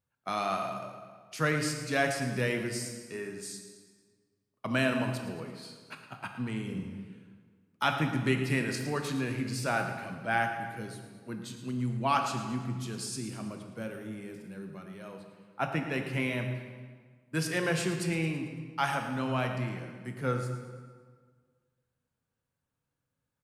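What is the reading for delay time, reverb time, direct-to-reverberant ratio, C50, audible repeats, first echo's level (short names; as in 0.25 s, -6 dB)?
0.111 s, 1.7 s, 4.0 dB, 5.5 dB, 4, -12.0 dB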